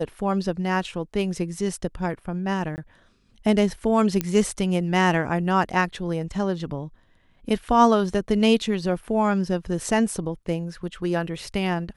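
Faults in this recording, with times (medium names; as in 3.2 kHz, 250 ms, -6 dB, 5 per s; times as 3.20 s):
2.76–2.78 s: dropout 19 ms
4.21 s: pop -9 dBFS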